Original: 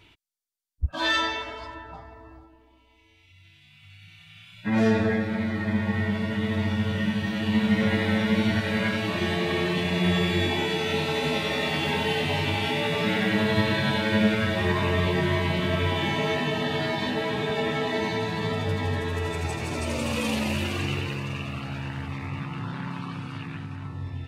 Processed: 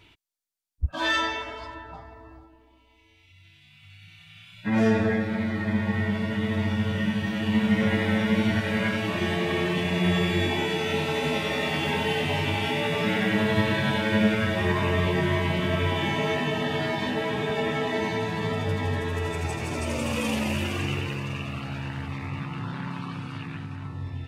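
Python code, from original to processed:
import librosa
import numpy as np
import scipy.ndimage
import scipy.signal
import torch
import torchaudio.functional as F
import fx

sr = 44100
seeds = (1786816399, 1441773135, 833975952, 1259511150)

y = fx.dynamic_eq(x, sr, hz=4100.0, q=4.7, threshold_db=-51.0, ratio=4.0, max_db=-7)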